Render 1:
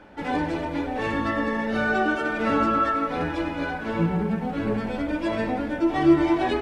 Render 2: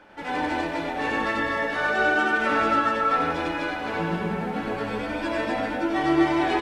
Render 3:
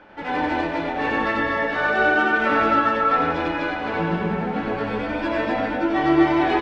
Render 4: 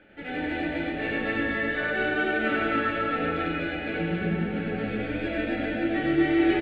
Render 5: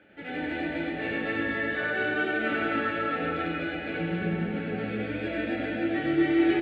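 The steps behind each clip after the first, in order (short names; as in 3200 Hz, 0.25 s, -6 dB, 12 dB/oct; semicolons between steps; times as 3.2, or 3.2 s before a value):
low shelf 390 Hz -10 dB; on a send: loudspeakers at several distances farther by 33 m -1 dB, 86 m -1 dB
air absorption 140 m; gain +4 dB
fixed phaser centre 2400 Hz, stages 4; echo 0.28 s -3.5 dB; gain -3.5 dB
HPF 78 Hz; reverb RT60 1.3 s, pre-delay 3 ms, DRR 13 dB; gain -2 dB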